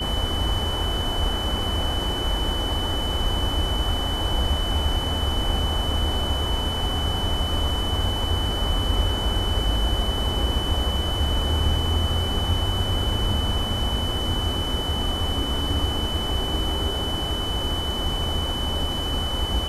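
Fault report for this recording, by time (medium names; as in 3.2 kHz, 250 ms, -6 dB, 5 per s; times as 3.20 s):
whine 3 kHz -28 dBFS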